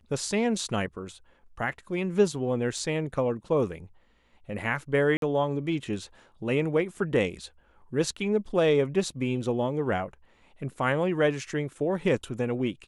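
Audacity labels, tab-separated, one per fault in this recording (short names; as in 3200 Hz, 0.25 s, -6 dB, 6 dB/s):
2.780000	2.780000	gap 2.1 ms
5.170000	5.220000	gap 52 ms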